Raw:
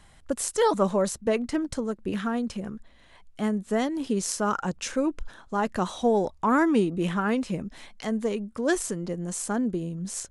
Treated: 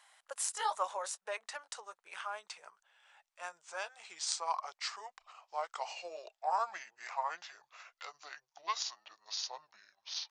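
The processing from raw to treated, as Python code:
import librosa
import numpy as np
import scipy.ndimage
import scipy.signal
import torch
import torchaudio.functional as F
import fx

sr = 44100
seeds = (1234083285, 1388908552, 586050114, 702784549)

y = fx.pitch_glide(x, sr, semitones=-9.5, runs='starting unshifted')
y = scipy.signal.sosfilt(scipy.signal.cheby2(4, 50, 280.0, 'highpass', fs=sr, output='sos'), y)
y = y * librosa.db_to_amplitude(-4.0)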